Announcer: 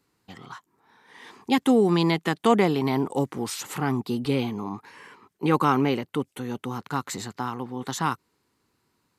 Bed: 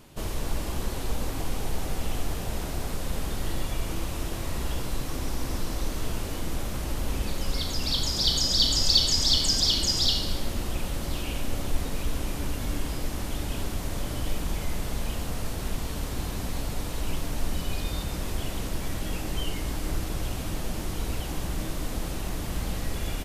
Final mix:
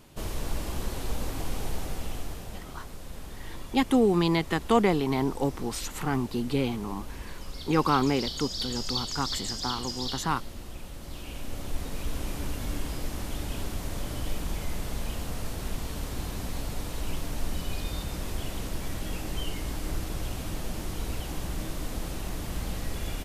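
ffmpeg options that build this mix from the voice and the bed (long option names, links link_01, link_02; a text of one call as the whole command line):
ffmpeg -i stem1.wav -i stem2.wav -filter_complex "[0:a]adelay=2250,volume=-2.5dB[link_01];[1:a]volume=6.5dB,afade=type=out:start_time=1.66:duration=0.99:silence=0.354813,afade=type=in:start_time=10.98:duration=1.3:silence=0.375837[link_02];[link_01][link_02]amix=inputs=2:normalize=0" out.wav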